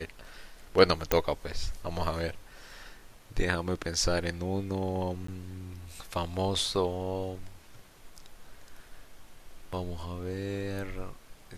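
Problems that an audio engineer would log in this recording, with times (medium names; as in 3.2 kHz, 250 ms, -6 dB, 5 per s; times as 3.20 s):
1.12 s: pop -9 dBFS
5.27–5.28 s: dropout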